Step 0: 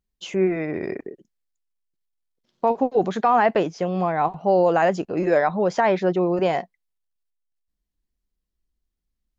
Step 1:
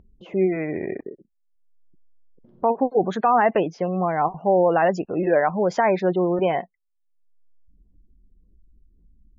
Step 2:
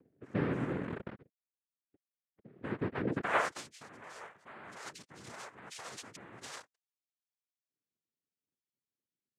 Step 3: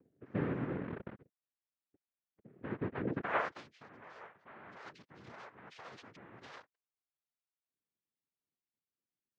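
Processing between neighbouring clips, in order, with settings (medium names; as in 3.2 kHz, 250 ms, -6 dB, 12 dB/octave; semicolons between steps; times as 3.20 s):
spectral gate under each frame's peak -30 dB strong; level-controlled noise filter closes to 410 Hz, open at -18 dBFS; upward compressor, threshold -34 dBFS
peak limiter -19 dBFS, peak gain reduction 11 dB; band-pass sweep 220 Hz -> 3.5 kHz, 3.12–3.64 s; noise-vocoded speech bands 3
distance through air 250 m; trim -2 dB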